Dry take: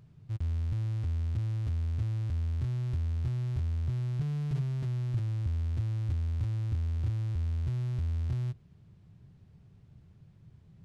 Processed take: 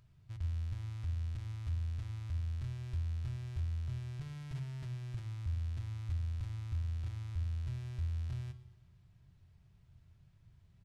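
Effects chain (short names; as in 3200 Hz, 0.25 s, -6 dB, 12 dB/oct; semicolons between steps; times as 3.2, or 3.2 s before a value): bell 290 Hz -12 dB 2.3 oct; feedback echo 0.119 s, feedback 56%, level -19 dB; on a send at -9 dB: reverb RT60 0.75 s, pre-delay 3 ms; on the sum: gain -2.5 dB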